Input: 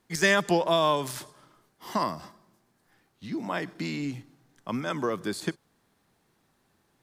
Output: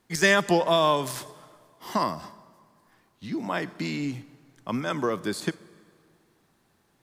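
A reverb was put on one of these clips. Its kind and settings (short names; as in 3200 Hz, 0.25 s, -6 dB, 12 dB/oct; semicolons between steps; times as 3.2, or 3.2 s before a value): plate-style reverb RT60 2.3 s, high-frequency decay 0.75×, DRR 19.5 dB; gain +2 dB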